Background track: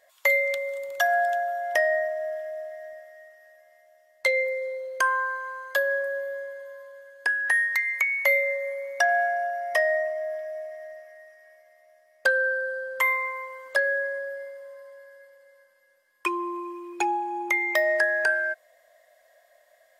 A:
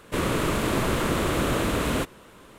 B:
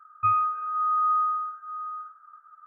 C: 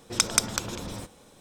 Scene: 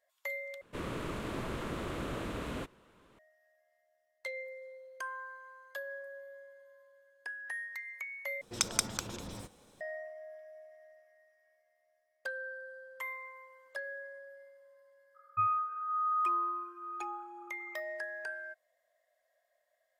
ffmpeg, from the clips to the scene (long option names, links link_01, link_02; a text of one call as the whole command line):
ffmpeg -i bed.wav -i cue0.wav -i cue1.wav -i cue2.wav -filter_complex "[0:a]volume=-17.5dB[link_01];[1:a]highshelf=frequency=7000:gain=-10[link_02];[2:a]agate=range=-33dB:threshold=-50dB:ratio=3:release=100:detection=peak[link_03];[link_01]asplit=3[link_04][link_05][link_06];[link_04]atrim=end=0.614[link_07];[link_02]atrim=end=2.58,asetpts=PTS-STARTPTS,volume=-13.5dB[link_08];[link_05]atrim=start=3.186:end=8.414[link_09];[3:a]atrim=end=1.4,asetpts=PTS-STARTPTS,volume=-7.5dB[link_10];[link_06]atrim=start=9.806[link_11];[link_03]atrim=end=2.66,asetpts=PTS-STARTPTS,volume=-7.5dB,afade=type=in:duration=0.004:curve=hsin,afade=type=out:start_time=2.656:duration=0.004:curve=hsin,adelay=15140[link_12];[link_07][link_08]acrossfade=duration=0.004:curve1=hsin:curve2=hsin[link_13];[link_13][link_09]acrossfade=duration=0.004:curve1=hsin:curve2=hsin[link_14];[link_14][link_10]acrossfade=duration=0.004:curve1=hsin:curve2=hsin[link_15];[link_15][link_11]acrossfade=duration=0.004:curve1=hsin:curve2=hsin[link_16];[link_16][link_12]amix=inputs=2:normalize=0" out.wav